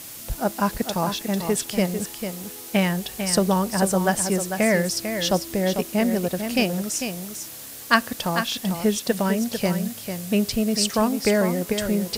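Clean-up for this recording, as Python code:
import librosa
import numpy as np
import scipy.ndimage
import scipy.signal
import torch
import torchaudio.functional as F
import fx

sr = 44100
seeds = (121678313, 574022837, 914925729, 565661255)

y = fx.noise_reduce(x, sr, print_start_s=7.41, print_end_s=7.91, reduce_db=30.0)
y = fx.fix_echo_inverse(y, sr, delay_ms=447, level_db=-8.0)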